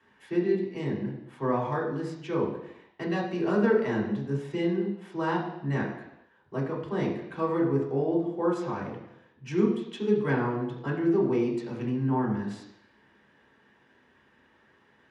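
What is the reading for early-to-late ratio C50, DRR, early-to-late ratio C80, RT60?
5.5 dB, -4.5 dB, 8.0 dB, 0.80 s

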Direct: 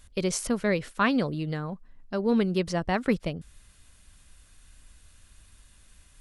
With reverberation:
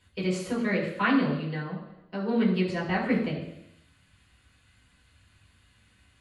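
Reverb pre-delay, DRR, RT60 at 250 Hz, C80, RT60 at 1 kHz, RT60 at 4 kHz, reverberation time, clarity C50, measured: 3 ms, -6.5 dB, 0.85 s, 7.5 dB, 0.85 s, 0.90 s, 0.85 s, 5.5 dB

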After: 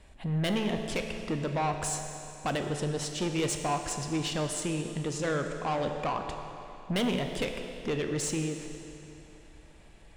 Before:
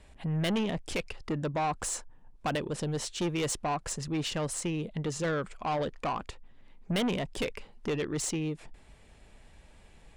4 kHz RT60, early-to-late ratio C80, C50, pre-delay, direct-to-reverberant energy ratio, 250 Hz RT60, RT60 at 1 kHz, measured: 2.7 s, 6.5 dB, 5.5 dB, 12 ms, 4.5 dB, 3.0 s, 3.0 s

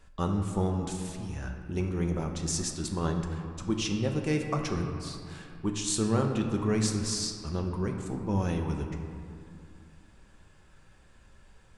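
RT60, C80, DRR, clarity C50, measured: 2.4 s, 6.5 dB, 2.5 dB, 5.0 dB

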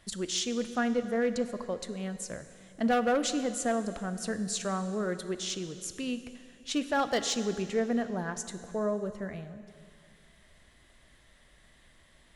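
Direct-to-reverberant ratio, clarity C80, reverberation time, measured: 10.0 dB, 12.0 dB, 2.5 s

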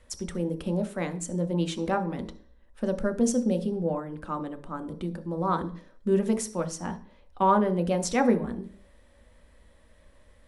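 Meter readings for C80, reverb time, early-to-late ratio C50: 18.5 dB, 0.45 s, 14.0 dB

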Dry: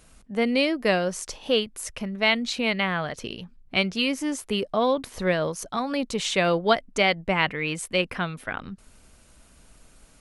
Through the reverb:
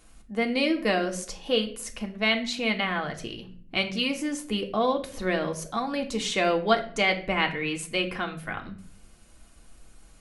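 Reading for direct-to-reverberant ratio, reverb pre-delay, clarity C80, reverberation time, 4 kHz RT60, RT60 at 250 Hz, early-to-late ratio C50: 3.0 dB, 3 ms, 16.5 dB, 0.50 s, 0.35 s, 0.95 s, 12.5 dB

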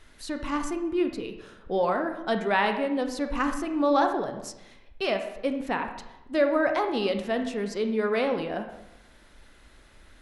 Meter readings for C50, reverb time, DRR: 8.0 dB, 0.90 s, 5.5 dB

